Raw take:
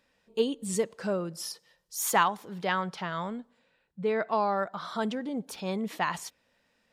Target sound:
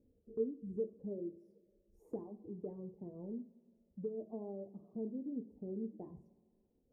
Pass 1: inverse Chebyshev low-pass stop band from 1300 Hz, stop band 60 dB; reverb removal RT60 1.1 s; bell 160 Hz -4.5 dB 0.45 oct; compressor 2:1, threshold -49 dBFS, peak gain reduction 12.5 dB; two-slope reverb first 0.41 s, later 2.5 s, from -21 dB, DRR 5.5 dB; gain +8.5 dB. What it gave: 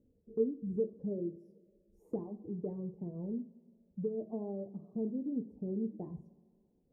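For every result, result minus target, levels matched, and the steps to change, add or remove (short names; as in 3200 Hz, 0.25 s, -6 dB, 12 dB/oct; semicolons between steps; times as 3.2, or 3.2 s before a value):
compressor: peak gain reduction -4.5 dB; 125 Hz band +2.5 dB
change: compressor 2:1, threshold -58.5 dBFS, peak gain reduction 17 dB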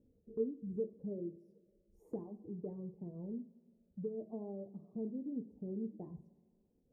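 125 Hz band +2.5 dB
change: bell 160 Hz -13.5 dB 0.45 oct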